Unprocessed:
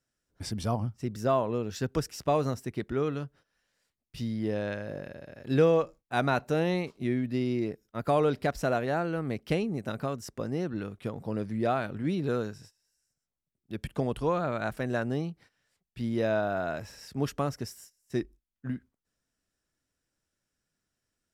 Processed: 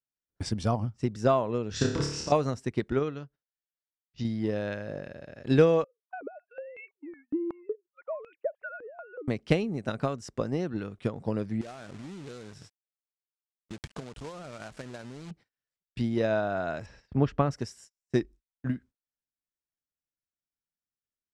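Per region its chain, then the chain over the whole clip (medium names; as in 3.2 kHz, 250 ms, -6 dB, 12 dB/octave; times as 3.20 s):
1.71–2.32 s: low-pass 7.4 kHz + compressor with a negative ratio -29 dBFS, ratio -0.5 + flutter echo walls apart 4.8 m, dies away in 0.73 s
2.99–4.25 s: elliptic low-pass 6.7 kHz + upward expansion, over -45 dBFS
5.84–9.28 s: formants replaced by sine waves + compression 8:1, threshold -28 dBFS + step-sequenced band-pass 5.4 Hz 320–2500 Hz
11.61–15.31 s: compression 4:1, threshold -42 dBFS + companded quantiser 4-bit
16.86–17.51 s: low-pass 2.9 kHz + bass shelf 100 Hz +10 dB
whole clip: low-pass 8.7 kHz 24 dB/octave; gate -52 dBFS, range -20 dB; transient shaper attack +6 dB, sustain -1 dB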